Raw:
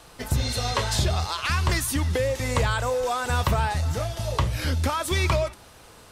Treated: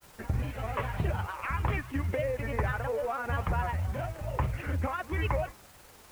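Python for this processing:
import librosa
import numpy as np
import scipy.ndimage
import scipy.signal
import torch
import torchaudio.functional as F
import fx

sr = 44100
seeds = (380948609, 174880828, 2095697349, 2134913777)

p1 = scipy.signal.sosfilt(scipy.signal.butter(8, 2600.0, 'lowpass', fs=sr, output='sos'), x)
p2 = fx.quant_dither(p1, sr, seeds[0], bits=6, dither='triangular')
p3 = p1 + (p2 * librosa.db_to_amplitude(-11.0))
p4 = fx.granulator(p3, sr, seeds[1], grain_ms=100.0, per_s=20.0, spray_ms=23.0, spread_st=3)
y = p4 * librosa.db_to_amplitude(-7.5)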